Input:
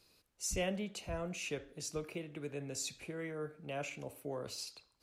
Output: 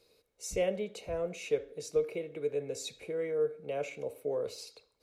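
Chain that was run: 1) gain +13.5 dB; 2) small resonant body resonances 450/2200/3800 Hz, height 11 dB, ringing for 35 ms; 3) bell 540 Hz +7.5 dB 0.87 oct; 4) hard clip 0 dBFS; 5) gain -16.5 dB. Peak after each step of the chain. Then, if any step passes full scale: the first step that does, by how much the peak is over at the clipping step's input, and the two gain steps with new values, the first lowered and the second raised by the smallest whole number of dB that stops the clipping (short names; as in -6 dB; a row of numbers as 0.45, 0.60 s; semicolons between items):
-11.5, -7.0, -2.0, -2.0, -18.5 dBFS; no overload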